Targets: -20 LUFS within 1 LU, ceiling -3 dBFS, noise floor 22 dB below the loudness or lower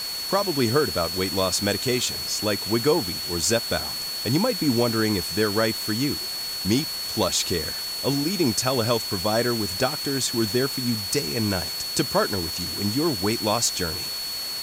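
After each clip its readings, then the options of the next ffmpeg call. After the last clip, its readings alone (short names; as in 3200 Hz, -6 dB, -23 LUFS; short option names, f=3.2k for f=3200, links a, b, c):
steady tone 4400 Hz; tone level -29 dBFS; noise floor -31 dBFS; noise floor target -46 dBFS; loudness -23.5 LUFS; peak -8.0 dBFS; loudness target -20.0 LUFS
-> -af "bandreject=f=4.4k:w=30"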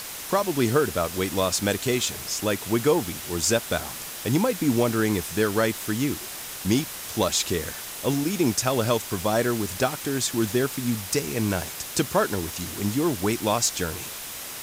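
steady tone none; noise floor -36 dBFS; noise floor target -47 dBFS
-> -af "afftdn=nr=11:nf=-36"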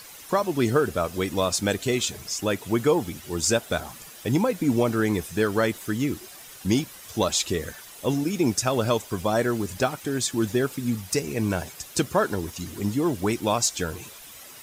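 noise floor -45 dBFS; noise floor target -48 dBFS
-> -af "afftdn=nr=6:nf=-45"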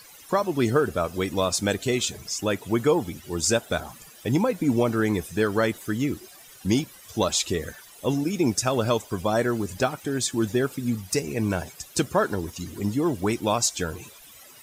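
noise floor -49 dBFS; loudness -25.5 LUFS; peak -9.0 dBFS; loudness target -20.0 LUFS
-> -af "volume=5.5dB"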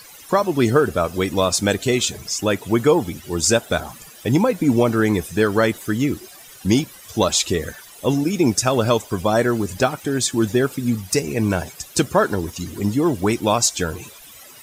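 loudness -20.0 LUFS; peak -3.5 dBFS; noise floor -43 dBFS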